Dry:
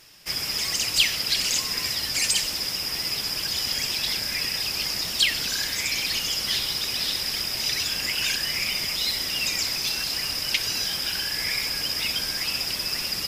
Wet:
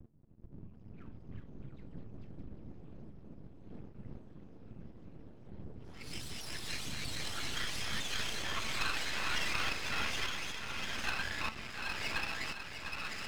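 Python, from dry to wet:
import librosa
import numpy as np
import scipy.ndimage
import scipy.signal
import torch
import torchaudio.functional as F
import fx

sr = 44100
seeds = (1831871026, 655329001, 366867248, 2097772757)

p1 = fx.pitch_trill(x, sr, semitones=-11.5, every_ms=187)
p2 = fx.dmg_wind(p1, sr, seeds[0], corner_hz=96.0, level_db=-23.0)
p3 = fx.auto_swell(p2, sr, attack_ms=531.0)
p4 = fx.high_shelf(p3, sr, hz=4800.0, db=-10.0)
p5 = fx.comb_fb(p4, sr, f0_hz=220.0, decay_s=0.27, harmonics='all', damping=0.0, mix_pct=60)
p6 = p5 + fx.echo_feedback(p5, sr, ms=703, feedback_pct=55, wet_db=-8, dry=0)
p7 = fx.filter_sweep_lowpass(p6, sr, from_hz=170.0, to_hz=1800.0, start_s=8.03, end_s=8.79, q=1.3)
p8 = fx.riaa(p7, sr, side='recording')
p9 = np.maximum(p8, 0.0)
p10 = fx.echo_pitch(p9, sr, ms=576, semitones=4, count=3, db_per_echo=-3.0)
y = F.gain(torch.from_numpy(p10), 3.5).numpy()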